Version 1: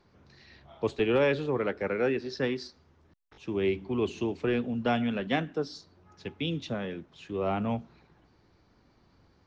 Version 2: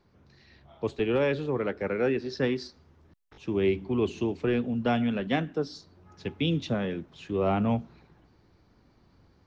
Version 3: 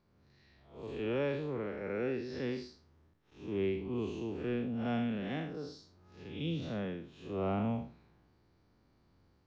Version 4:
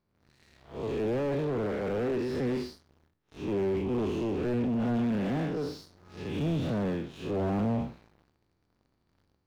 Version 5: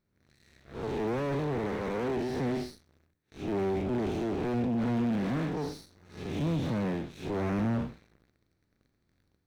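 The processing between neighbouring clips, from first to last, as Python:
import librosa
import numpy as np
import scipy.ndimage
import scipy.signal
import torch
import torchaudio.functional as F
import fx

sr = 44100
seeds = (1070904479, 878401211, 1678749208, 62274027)

y1 = fx.low_shelf(x, sr, hz=380.0, db=4.0)
y1 = fx.rider(y1, sr, range_db=10, speed_s=2.0)
y2 = fx.spec_blur(y1, sr, span_ms=155.0)
y2 = y2 * 10.0 ** (-6.0 / 20.0)
y3 = fx.leveller(y2, sr, passes=3)
y3 = fx.slew_limit(y3, sr, full_power_hz=21.0)
y4 = fx.lower_of_two(y3, sr, delay_ms=0.51)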